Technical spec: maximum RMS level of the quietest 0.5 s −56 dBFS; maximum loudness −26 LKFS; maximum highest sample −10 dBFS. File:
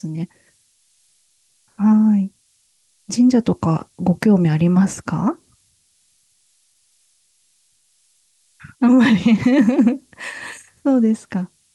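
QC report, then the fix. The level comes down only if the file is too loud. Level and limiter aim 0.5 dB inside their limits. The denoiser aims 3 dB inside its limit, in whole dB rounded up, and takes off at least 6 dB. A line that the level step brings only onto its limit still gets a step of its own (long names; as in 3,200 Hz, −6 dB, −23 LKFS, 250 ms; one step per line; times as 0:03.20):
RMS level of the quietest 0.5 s −61 dBFS: in spec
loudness −17.0 LKFS: out of spec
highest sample −5.5 dBFS: out of spec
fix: level −9.5 dB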